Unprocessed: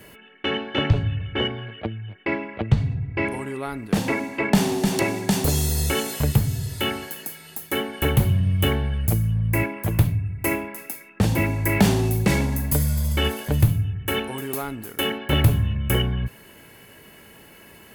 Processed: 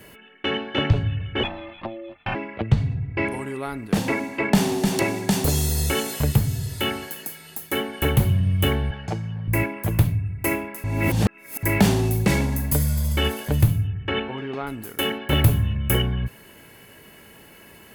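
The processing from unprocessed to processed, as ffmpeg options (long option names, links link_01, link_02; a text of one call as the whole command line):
ffmpeg -i in.wav -filter_complex "[0:a]asettb=1/sr,asplit=3[link_01][link_02][link_03];[link_01]atrim=end=1.434[link_04];[link_02]atrim=start=1.43:end=2.35,asetpts=PTS-STARTPTS,afade=type=in:duration=0.004:curve=qsin,afade=type=out:start_time=0.916:duration=0.004:curve=qsin,aeval=exprs='val(0)*sin(2*PI*450*n/s)':channel_layout=same[link_05];[link_03]atrim=start=2.346[link_06];[link_04][link_05]acrossfade=duration=0.004:curve1=hsin:curve2=qsin[link_07];[link_07][link_06]acrossfade=duration=0.004:curve1=qsin:curve2=hsin,asettb=1/sr,asplit=3[link_08][link_09][link_10];[link_08]atrim=end=8.914[link_11];[link_09]atrim=start=8.91:end=9.48,asetpts=PTS-STARTPTS,afade=type=in:duration=0.004:curve=qsin,afade=type=out:start_time=0.566:duration=0.004:curve=qsin,highpass=170,equalizer=frequency=250:width_type=q:width=4:gain=-8,equalizer=frequency=830:width_type=q:width=4:gain=9,equalizer=frequency=1600:width_type=q:width=4:gain=4,lowpass=frequency=5800:width=0.5412,lowpass=frequency=5800:width=1.3066[link_12];[link_10]atrim=start=9.476[link_13];[link_11][link_12]acrossfade=duration=0.004:curve1=hsin:curve2=qsin[link_14];[link_14][link_13]acrossfade=duration=0.004:curve1=qsin:curve2=hsin,asettb=1/sr,asplit=3[link_15][link_16][link_17];[link_15]atrim=end=13.874[link_18];[link_16]atrim=start=13.87:end=14.67,asetpts=PTS-STARTPTS,afade=type=in:duration=0.004:curve=qsin,afade=type=out:start_time=0.796:duration=0.004:curve=qsin,lowpass=frequency=3600:width=0.5412,lowpass=frequency=3600:width=1.3066[link_19];[link_17]atrim=start=14.666[link_20];[link_18][link_19]acrossfade=duration=0.004:curve1=hsin:curve2=qsin[link_21];[link_21][link_20]acrossfade=duration=0.004:curve1=qsin:curve2=hsin,asettb=1/sr,asplit=3[link_22][link_23][link_24];[link_22]atrim=end=15.324[link_25];[link_23]atrim=start=15.32:end=15.97,asetpts=PTS-STARTPTS,afade=type=in:duration=0.004:curve=qsin,afade=type=out:start_time=0.646:duration=0.004:curve=qsin,highshelf=frequency=11000:gain=6[link_26];[link_24]atrim=start=15.966[link_27];[link_25][link_26]acrossfade=duration=0.004:curve1=hsin:curve2=qsin[link_28];[link_28][link_27]acrossfade=duration=0.004:curve1=qsin:curve2=hsin,asplit=3[link_29][link_30][link_31];[link_29]atrim=end=10.842[link_32];[link_30]atrim=start=10.838:end=11.632,asetpts=PTS-STARTPTS,areverse[link_33];[link_31]atrim=start=11.628[link_34];[link_32][link_33]acrossfade=duration=0.004:curve1=hsin:curve2=hsin[link_35];[link_35][link_34]acrossfade=duration=0.004:curve1=hsin:curve2=hsin" out.wav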